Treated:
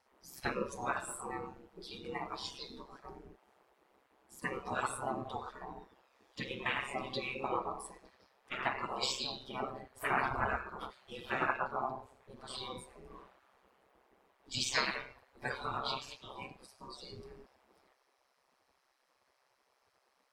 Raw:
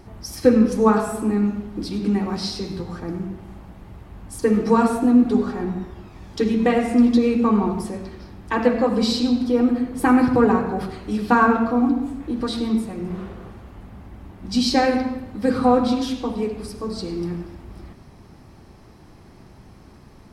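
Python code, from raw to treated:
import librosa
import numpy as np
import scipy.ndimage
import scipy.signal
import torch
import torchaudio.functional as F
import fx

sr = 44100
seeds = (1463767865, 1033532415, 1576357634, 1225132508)

y = x * np.sin(2.0 * np.pi * 66.0 * np.arange(len(x)) / sr)
y = fx.noise_reduce_blind(y, sr, reduce_db=15)
y = fx.spec_gate(y, sr, threshold_db=-15, keep='weak')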